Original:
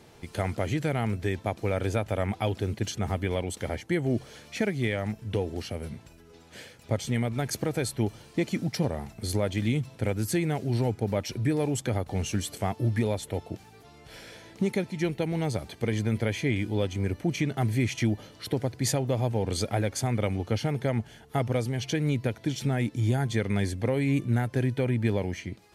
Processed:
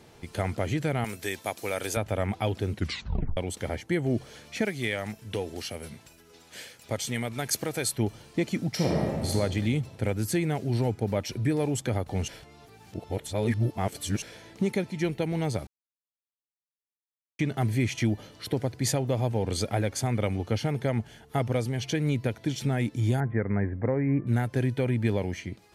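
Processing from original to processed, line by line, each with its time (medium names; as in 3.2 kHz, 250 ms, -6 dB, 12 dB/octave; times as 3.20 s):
1.04–1.97 s: RIAA curve recording
2.73 s: tape stop 0.64 s
4.65–7.98 s: tilt EQ +2 dB/octave
8.69–9.30 s: reverb throw, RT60 1.8 s, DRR -2.5 dB
12.28–14.22 s: reverse
15.67–17.39 s: mute
23.20–24.27 s: steep low-pass 2 kHz 48 dB/octave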